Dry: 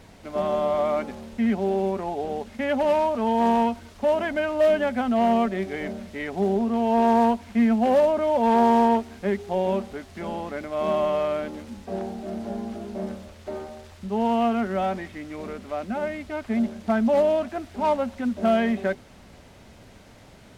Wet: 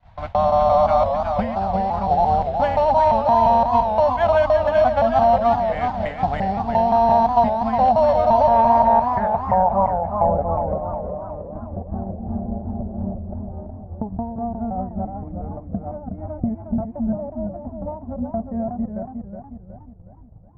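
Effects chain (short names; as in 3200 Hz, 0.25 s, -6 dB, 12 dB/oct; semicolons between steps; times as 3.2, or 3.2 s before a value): local time reversal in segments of 0.173 s; in parallel at -9.5 dB: sample-and-hold 9×; on the sum: compressor 4:1, threshold -28 dBFS, peak gain reduction 13 dB; low-pass sweep 3500 Hz -> 340 Hz, 8.26–10.92; hum 50 Hz, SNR 29 dB; EQ curve 110 Hz 0 dB, 380 Hz -29 dB, 740 Hz -1 dB, 3200 Hz -18 dB, 5600 Hz -16 dB; expander -37 dBFS; dynamic EQ 2000 Hz, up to -7 dB, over -55 dBFS, Q 0.98; maximiser +29.5 dB; warbling echo 0.364 s, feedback 45%, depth 127 cents, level -6.5 dB; gain -7.5 dB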